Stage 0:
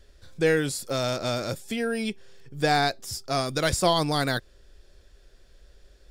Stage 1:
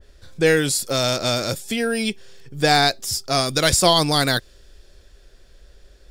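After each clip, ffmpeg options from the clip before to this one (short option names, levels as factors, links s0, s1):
-af "adynamicequalizer=threshold=0.0112:dfrequency=2400:dqfactor=0.7:tfrequency=2400:tqfactor=0.7:attack=5:release=100:ratio=0.375:range=3:mode=boostabove:tftype=highshelf,volume=1.78"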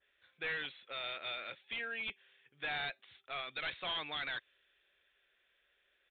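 -af "bandpass=f=2300:t=q:w=1.7:csg=0,aresample=8000,volume=21.1,asoftclip=hard,volume=0.0473,aresample=44100,volume=0.398"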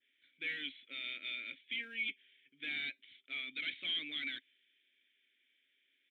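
-filter_complex "[0:a]acrusher=bits=8:mode=log:mix=0:aa=0.000001,asplit=3[s0][s1][s2];[s0]bandpass=f=270:t=q:w=8,volume=1[s3];[s1]bandpass=f=2290:t=q:w=8,volume=0.501[s4];[s2]bandpass=f=3010:t=q:w=8,volume=0.355[s5];[s3][s4][s5]amix=inputs=3:normalize=0,crystalizer=i=2:c=0,volume=2.82"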